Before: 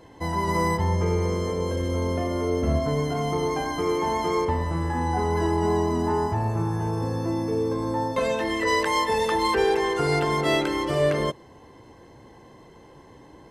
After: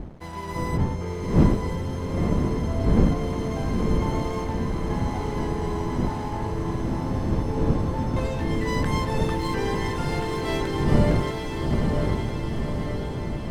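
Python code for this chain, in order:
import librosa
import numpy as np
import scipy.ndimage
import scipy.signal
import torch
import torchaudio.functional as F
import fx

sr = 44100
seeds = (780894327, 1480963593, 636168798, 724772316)

p1 = fx.dmg_wind(x, sr, seeds[0], corner_hz=190.0, level_db=-20.0)
p2 = np.sign(p1) * np.maximum(np.abs(p1) - 10.0 ** (-35.0 / 20.0), 0.0)
p3 = p2 + fx.echo_diffused(p2, sr, ms=941, feedback_pct=66, wet_db=-4.0, dry=0)
y = F.gain(torch.from_numpy(p3), -6.5).numpy()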